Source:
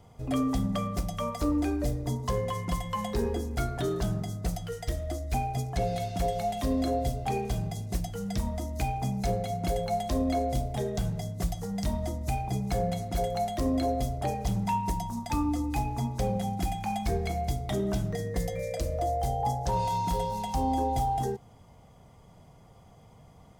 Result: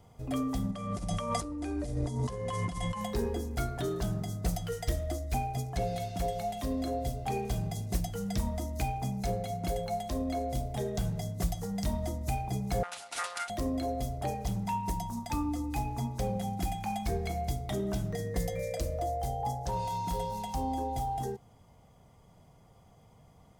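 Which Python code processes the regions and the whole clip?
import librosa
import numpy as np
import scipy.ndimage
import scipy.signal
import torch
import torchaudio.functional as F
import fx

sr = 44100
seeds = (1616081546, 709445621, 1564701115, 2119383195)

y = fx.chain(x, sr, fx.over_compress(threshold_db=-36.0, ratio=-1.0),
    fx.resample_bad(factor=2, down='none', up='filtered'), at=(0.71, 3.01))
y = fx.chain(y, sr, fx.self_delay(depth_ms=0.51),
    fx.highpass(hz=1400.0, slope=12),
    fx.resample_bad(factor=2, down='none', up='filtered'), at=(12.83, 13.5))
y = fx.high_shelf(y, sr, hz=9900.0, db=4.0)
y = fx.rider(y, sr, range_db=10, speed_s=0.5)
y = y * librosa.db_to_amplitude(-3.0)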